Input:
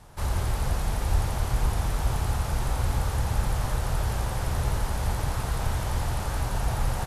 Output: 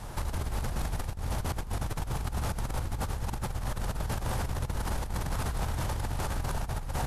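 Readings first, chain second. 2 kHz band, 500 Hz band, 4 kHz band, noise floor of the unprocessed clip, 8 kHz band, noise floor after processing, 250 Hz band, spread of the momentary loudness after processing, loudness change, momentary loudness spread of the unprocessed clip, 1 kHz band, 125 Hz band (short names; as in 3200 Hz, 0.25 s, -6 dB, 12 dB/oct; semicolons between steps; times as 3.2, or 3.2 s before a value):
-4.0 dB, -4.0 dB, -4.5 dB, -31 dBFS, -4.5 dB, -38 dBFS, -2.5 dB, 2 LU, -5.5 dB, 2 LU, -4.5 dB, -6.0 dB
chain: octaver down 1 oct, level -4 dB; negative-ratio compressor -29 dBFS, ratio -0.5; limiter -25.5 dBFS, peak gain reduction 11.5 dB; gain +3 dB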